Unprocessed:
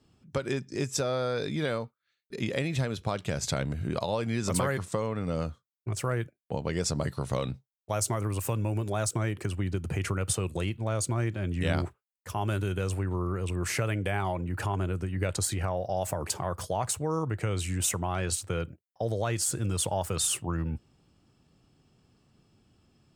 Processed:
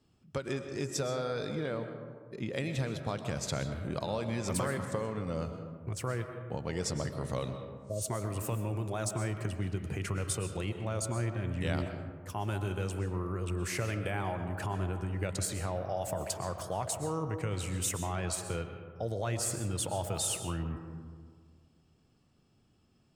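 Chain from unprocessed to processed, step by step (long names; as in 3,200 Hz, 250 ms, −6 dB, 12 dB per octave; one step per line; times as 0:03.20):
0:01.55–0:02.54: high-shelf EQ 2,600 Hz −10 dB
0:07.73–0:08.02: healed spectral selection 690–9,200 Hz both
convolution reverb RT60 1.8 s, pre-delay 85 ms, DRR 7 dB
level −5 dB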